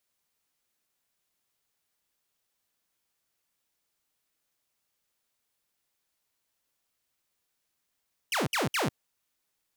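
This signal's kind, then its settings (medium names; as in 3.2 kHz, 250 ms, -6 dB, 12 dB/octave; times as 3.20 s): burst of laser zaps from 3.2 kHz, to 99 Hz, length 0.15 s saw, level -23 dB, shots 3, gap 0.06 s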